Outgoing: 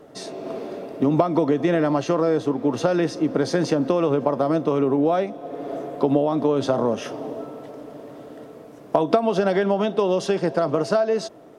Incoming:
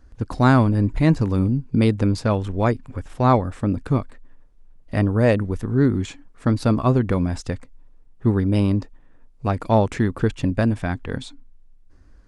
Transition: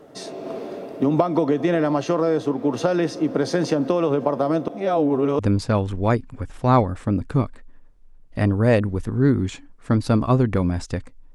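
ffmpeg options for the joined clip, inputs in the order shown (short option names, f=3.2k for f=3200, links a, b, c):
-filter_complex "[0:a]apad=whole_dur=11.34,atrim=end=11.34,asplit=2[a][b];[a]atrim=end=4.682[c];[b]atrim=start=4.678:end=5.392,asetpts=PTS-STARTPTS,areverse[d];[1:a]atrim=start=1.948:end=7.9[e];[c][d]acrossfade=d=0.004:c1=hsin:c2=hsin[f];[f][e]acrossfade=d=0.004:c1=hsin:c2=hsin"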